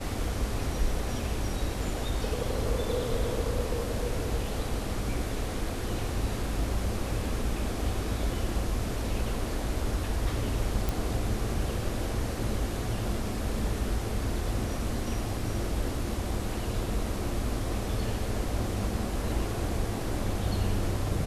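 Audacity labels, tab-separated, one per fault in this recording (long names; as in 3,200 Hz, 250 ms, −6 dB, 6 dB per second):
10.890000	10.890000	click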